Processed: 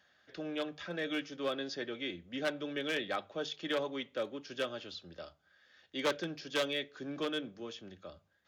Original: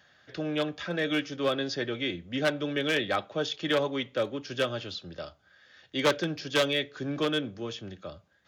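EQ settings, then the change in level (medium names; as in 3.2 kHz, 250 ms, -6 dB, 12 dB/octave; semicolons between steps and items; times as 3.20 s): peaking EQ 120 Hz -10 dB 0.5 oct; hum notches 50/100/150 Hz; -7.5 dB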